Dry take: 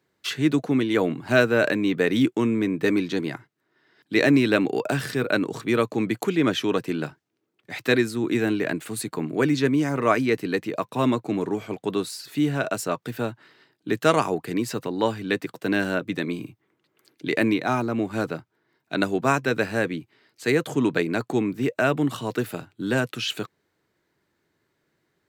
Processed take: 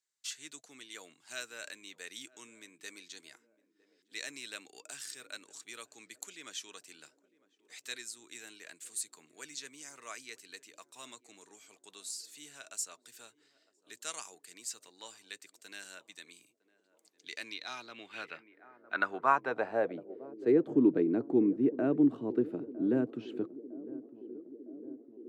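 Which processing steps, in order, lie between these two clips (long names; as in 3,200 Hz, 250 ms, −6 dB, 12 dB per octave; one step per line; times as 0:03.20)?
feedback echo with a band-pass in the loop 957 ms, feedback 76%, band-pass 360 Hz, level −17.5 dB
band-pass filter sweep 7,400 Hz → 310 Hz, 0:17.09–0:20.67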